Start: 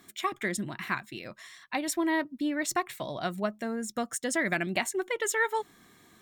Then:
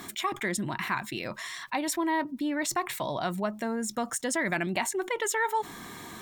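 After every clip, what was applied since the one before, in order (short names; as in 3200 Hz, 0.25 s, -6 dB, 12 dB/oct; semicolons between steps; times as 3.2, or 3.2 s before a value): bell 930 Hz +7.5 dB 0.39 oct; fast leveller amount 50%; gain -4 dB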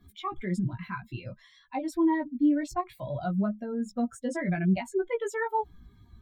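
per-bin expansion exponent 2; tilt -4 dB/oct; chorus 0.58 Hz, delay 15 ms, depth 2.1 ms; gain +3 dB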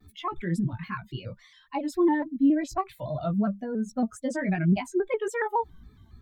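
shaped vibrato square 3.6 Hz, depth 100 cents; gain +2 dB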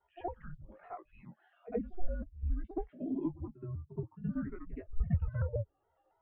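auto-wah 370–1100 Hz, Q 2.5, down, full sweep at -22 dBFS; mistuned SSB -350 Hz 360–3300 Hz; pre-echo 72 ms -14 dB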